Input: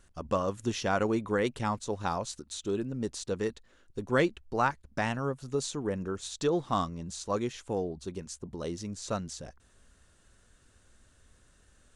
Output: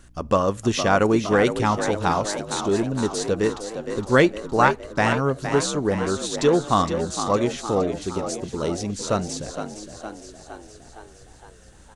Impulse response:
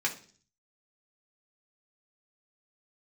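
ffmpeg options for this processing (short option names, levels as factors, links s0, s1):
-filter_complex "[0:a]asplit=2[s0][s1];[s1]asplit=7[s2][s3][s4][s5][s6][s7][s8];[s2]adelay=463,afreqshift=54,volume=0.355[s9];[s3]adelay=926,afreqshift=108,volume=0.209[s10];[s4]adelay=1389,afreqshift=162,volume=0.123[s11];[s5]adelay=1852,afreqshift=216,volume=0.0733[s12];[s6]adelay=2315,afreqshift=270,volume=0.0432[s13];[s7]adelay=2778,afreqshift=324,volume=0.0254[s14];[s8]adelay=3241,afreqshift=378,volume=0.015[s15];[s9][s10][s11][s12][s13][s14][s15]amix=inputs=7:normalize=0[s16];[s0][s16]amix=inputs=2:normalize=0,aeval=exprs='val(0)+0.000794*(sin(2*PI*60*n/s)+sin(2*PI*2*60*n/s)/2+sin(2*PI*3*60*n/s)/3+sin(2*PI*4*60*n/s)/4+sin(2*PI*5*60*n/s)/5)':c=same,asplit=2[s17][s18];[1:a]atrim=start_sample=2205[s19];[s18][s19]afir=irnorm=-1:irlink=0,volume=0.0562[s20];[s17][s20]amix=inputs=2:normalize=0,volume=2.82"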